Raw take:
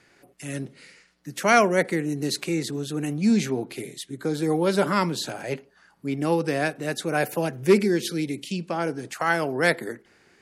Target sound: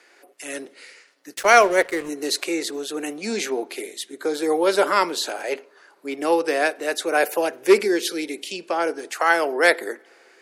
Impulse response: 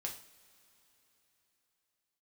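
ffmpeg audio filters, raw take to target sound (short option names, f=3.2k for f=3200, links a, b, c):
-filter_complex "[0:a]highpass=f=360:w=0.5412,highpass=f=360:w=1.3066,asplit=3[a][b][c];[a]afade=t=out:st=1.33:d=0.02[d];[b]aeval=exprs='sgn(val(0))*max(abs(val(0))-0.0106,0)':c=same,afade=t=in:st=1.33:d=0.02,afade=t=out:st=2.08:d=0.02[e];[c]afade=t=in:st=2.08:d=0.02[f];[d][e][f]amix=inputs=3:normalize=0,asplit=2[g][h];[1:a]atrim=start_sample=2205,asetrate=31752,aresample=44100,highshelf=f=4.5k:g=-12[i];[h][i]afir=irnorm=-1:irlink=0,volume=-19dB[j];[g][j]amix=inputs=2:normalize=0,volume=4.5dB"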